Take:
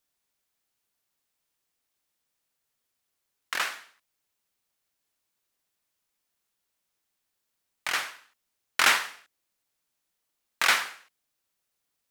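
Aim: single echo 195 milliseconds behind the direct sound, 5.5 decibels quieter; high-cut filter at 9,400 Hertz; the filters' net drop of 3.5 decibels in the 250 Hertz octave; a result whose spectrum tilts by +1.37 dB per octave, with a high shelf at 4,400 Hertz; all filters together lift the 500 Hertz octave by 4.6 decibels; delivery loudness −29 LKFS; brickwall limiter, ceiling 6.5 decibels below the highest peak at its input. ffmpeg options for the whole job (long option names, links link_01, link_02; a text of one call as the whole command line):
ffmpeg -i in.wav -af "lowpass=9400,equalizer=frequency=250:width_type=o:gain=-9,equalizer=frequency=500:width_type=o:gain=8,highshelf=frequency=4400:gain=-5,alimiter=limit=-14dB:level=0:latency=1,aecho=1:1:195:0.531,volume=0.5dB" out.wav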